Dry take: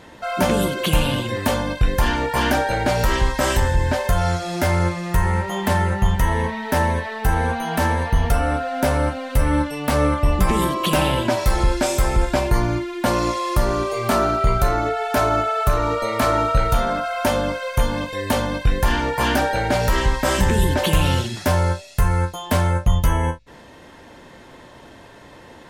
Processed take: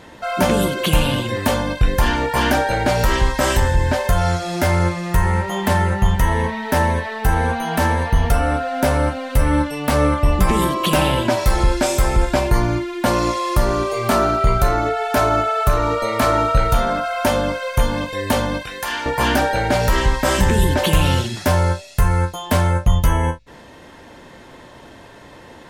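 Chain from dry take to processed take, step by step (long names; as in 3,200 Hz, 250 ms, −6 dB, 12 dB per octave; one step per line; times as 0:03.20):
0:18.63–0:19.06: high-pass filter 1,300 Hz 6 dB per octave
level +2 dB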